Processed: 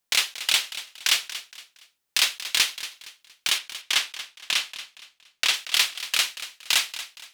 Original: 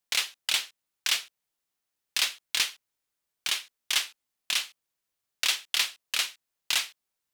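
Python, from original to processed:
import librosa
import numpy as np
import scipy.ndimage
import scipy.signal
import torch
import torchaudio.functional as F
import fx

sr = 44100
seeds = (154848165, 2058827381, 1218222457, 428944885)

y = fx.high_shelf(x, sr, hz=7100.0, db=-7.5, at=(3.58, 5.54))
y = fx.echo_feedback(y, sr, ms=233, feedback_pct=34, wet_db=-13.5)
y = y * librosa.db_to_amplitude(5.0)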